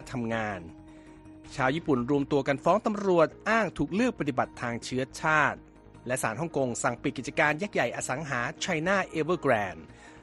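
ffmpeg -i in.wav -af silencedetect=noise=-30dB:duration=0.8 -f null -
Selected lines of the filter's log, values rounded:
silence_start: 0.58
silence_end: 1.58 | silence_duration: 1.00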